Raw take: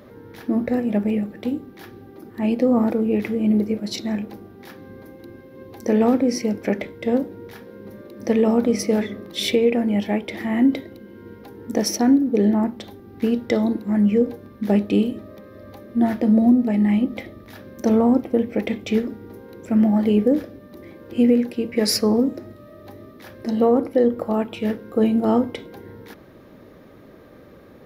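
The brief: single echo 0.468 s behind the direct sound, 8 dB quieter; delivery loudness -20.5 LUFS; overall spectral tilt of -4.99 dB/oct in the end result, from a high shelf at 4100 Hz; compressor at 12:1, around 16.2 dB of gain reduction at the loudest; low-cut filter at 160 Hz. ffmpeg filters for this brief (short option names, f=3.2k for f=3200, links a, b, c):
-af "highpass=160,highshelf=f=4.1k:g=-7.5,acompressor=threshold=-29dB:ratio=12,aecho=1:1:468:0.398,volume=14dB"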